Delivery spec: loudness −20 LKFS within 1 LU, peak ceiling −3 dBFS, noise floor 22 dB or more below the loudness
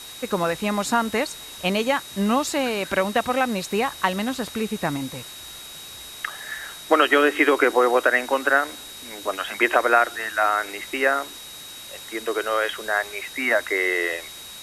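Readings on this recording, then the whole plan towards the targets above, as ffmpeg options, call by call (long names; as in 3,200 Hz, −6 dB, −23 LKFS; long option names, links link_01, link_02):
interfering tone 3,800 Hz; level of the tone −40 dBFS; background noise floor −40 dBFS; target noise floor −45 dBFS; integrated loudness −22.5 LKFS; sample peak −4.5 dBFS; target loudness −20.0 LKFS
→ -af "bandreject=frequency=3800:width=30"
-af "afftdn=noise_reduction=6:noise_floor=-40"
-af "volume=2.5dB,alimiter=limit=-3dB:level=0:latency=1"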